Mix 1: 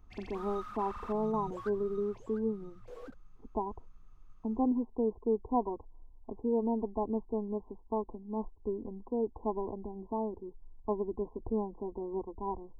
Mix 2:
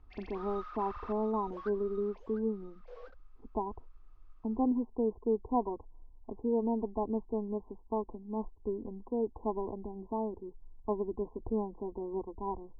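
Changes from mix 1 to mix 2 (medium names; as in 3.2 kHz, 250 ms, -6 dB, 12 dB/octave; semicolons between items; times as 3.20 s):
background: add Chebyshev band-pass 500–5300 Hz, order 3; master: add distance through air 80 m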